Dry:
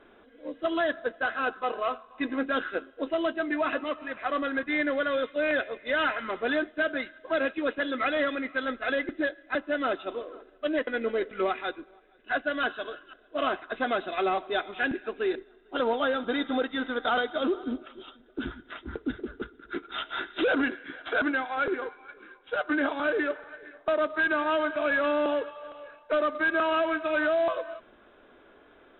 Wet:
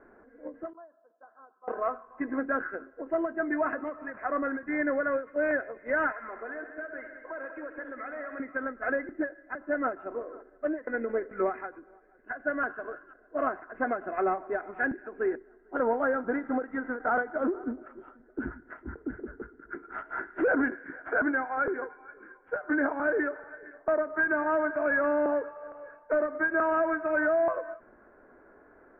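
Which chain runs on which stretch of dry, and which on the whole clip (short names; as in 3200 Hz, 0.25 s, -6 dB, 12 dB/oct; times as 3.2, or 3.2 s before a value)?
0.73–1.68 steep low-pass 1100 Hz + differentiator
6.12–8.4 bell 150 Hz -14.5 dB 1.9 oct + compressor 4:1, threshold -36 dBFS + multi-head echo 65 ms, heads all three, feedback 48%, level -13 dB
whole clip: steep low-pass 1900 Hz 48 dB/oct; notch 1200 Hz, Q 18; ending taper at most 210 dB/s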